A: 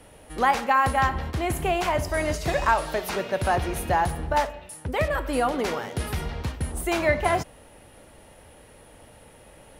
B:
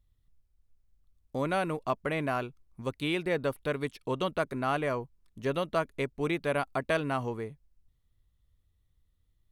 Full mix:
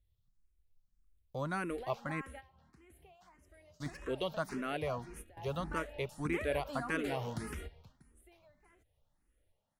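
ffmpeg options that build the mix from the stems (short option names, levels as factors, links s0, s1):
-filter_complex "[0:a]acompressor=threshold=0.0398:ratio=5,adelay=1400,volume=0.501,afade=t=in:st=5.46:d=0.22:silence=0.421697,afade=t=out:st=7.4:d=0.76:silence=0.298538[s0];[1:a]volume=0.708,asplit=3[s1][s2][s3];[s1]atrim=end=2.21,asetpts=PTS-STARTPTS,afade=t=out:st=2.206:d=0.004:c=hsin[s4];[s2]atrim=start=2.21:end=3.8,asetpts=PTS-STARTPTS,volume=0[s5];[s3]atrim=start=3.8,asetpts=PTS-STARTPTS,afade=t=in:d=0.004:c=hsin[s6];[s4][s5][s6]concat=n=3:v=0:a=1,asplit=2[s7][s8];[s8]apad=whole_len=493896[s9];[s0][s9]sidechaingate=range=0.2:threshold=0.001:ratio=16:detection=peak[s10];[s10][s7]amix=inputs=2:normalize=0,equalizer=f=850:w=1.5:g=-2.5,asplit=2[s11][s12];[s12]afreqshift=1.7[s13];[s11][s13]amix=inputs=2:normalize=1"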